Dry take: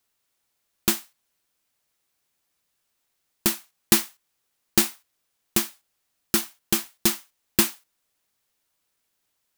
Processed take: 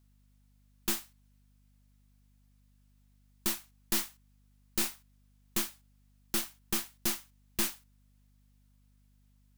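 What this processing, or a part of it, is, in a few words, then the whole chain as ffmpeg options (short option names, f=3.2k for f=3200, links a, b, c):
valve amplifier with mains hum: -af "aeval=exprs='(tanh(20*val(0)+0.7)-tanh(0.7))/20':c=same,aeval=exprs='val(0)+0.000631*(sin(2*PI*50*n/s)+sin(2*PI*2*50*n/s)/2+sin(2*PI*3*50*n/s)/3+sin(2*PI*4*50*n/s)/4+sin(2*PI*5*50*n/s)/5)':c=same"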